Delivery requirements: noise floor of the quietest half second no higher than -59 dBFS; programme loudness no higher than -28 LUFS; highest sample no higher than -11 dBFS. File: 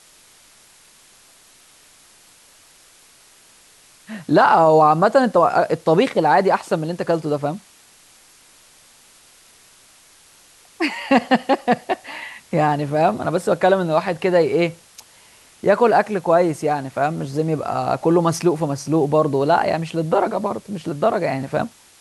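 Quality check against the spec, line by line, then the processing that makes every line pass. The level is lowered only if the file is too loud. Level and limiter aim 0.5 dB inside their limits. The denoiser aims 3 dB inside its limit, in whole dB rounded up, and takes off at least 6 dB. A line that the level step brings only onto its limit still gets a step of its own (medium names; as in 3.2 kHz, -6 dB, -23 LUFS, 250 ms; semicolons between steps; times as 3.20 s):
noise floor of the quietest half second -51 dBFS: fail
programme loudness -18.5 LUFS: fail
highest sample -4.5 dBFS: fail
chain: trim -10 dB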